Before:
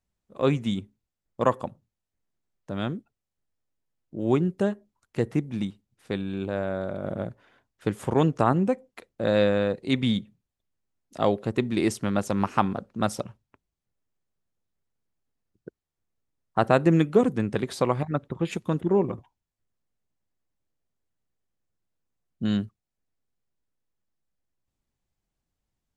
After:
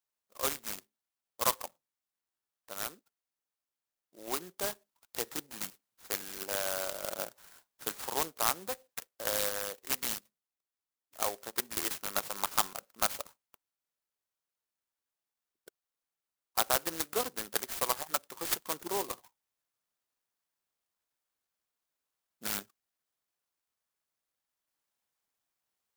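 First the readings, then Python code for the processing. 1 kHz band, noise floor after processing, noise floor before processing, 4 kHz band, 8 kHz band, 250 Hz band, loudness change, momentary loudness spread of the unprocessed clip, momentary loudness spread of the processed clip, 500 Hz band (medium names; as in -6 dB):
-7.0 dB, under -85 dBFS, under -85 dBFS, +0.5 dB, +10.5 dB, -22.5 dB, -7.5 dB, 12 LU, 10 LU, -13.5 dB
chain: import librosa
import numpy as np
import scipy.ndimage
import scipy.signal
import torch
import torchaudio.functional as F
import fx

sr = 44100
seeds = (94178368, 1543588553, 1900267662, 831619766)

p1 = scipy.signal.sosfilt(scipy.signal.butter(2, 1400.0, 'highpass', fs=sr, output='sos'), x)
p2 = fx.level_steps(p1, sr, step_db=12)
p3 = p1 + (p2 * librosa.db_to_amplitude(-0.5))
p4 = fx.high_shelf(p3, sr, hz=6600.0, db=-10.5)
p5 = fx.rider(p4, sr, range_db=4, speed_s=0.5)
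p6 = fx.clock_jitter(p5, sr, seeds[0], jitter_ms=0.14)
y = p6 * librosa.db_to_amplitude(1.5)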